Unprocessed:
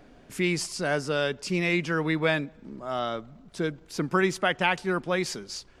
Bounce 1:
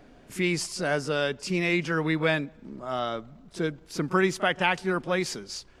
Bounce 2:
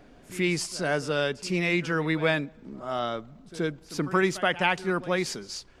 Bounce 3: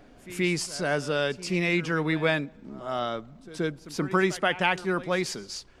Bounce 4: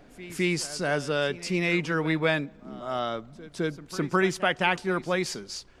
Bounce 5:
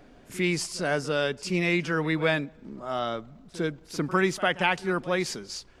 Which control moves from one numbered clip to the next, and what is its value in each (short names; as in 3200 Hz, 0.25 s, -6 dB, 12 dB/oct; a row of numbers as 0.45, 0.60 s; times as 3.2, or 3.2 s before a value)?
pre-echo, time: 32, 77, 128, 211, 52 ms